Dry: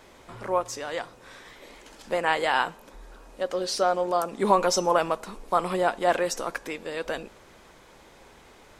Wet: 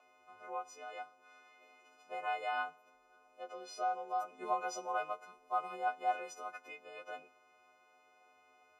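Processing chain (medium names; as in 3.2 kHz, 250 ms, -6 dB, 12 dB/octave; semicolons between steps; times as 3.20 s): partials quantised in pitch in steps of 3 st; vowel filter a; inharmonic resonator 83 Hz, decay 0.24 s, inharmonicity 0.008; trim +7 dB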